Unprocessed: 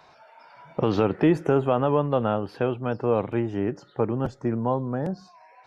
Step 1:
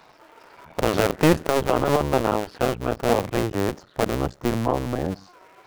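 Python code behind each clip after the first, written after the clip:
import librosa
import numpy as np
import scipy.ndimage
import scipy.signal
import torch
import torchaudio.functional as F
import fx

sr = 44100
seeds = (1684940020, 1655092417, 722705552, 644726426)

y = fx.cycle_switch(x, sr, every=2, mode='muted')
y = y * librosa.db_to_amplitude(4.5)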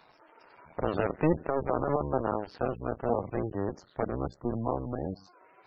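y = fx.spec_gate(x, sr, threshold_db=-20, keep='strong')
y = fx.high_shelf(y, sr, hz=4500.0, db=8.0)
y = y * librosa.db_to_amplitude(-8.0)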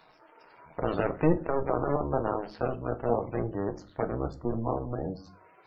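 y = fx.room_shoebox(x, sr, seeds[0], volume_m3=180.0, walls='furnished', distance_m=0.56)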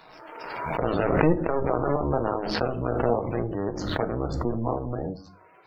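y = fx.pre_swell(x, sr, db_per_s=34.0)
y = y * librosa.db_to_amplitude(2.0)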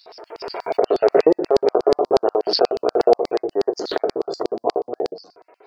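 y = fx.peak_eq(x, sr, hz=700.0, db=11.0, octaves=0.3)
y = fx.filter_lfo_highpass(y, sr, shape='square', hz=8.3, low_hz=410.0, high_hz=4700.0, q=6.9)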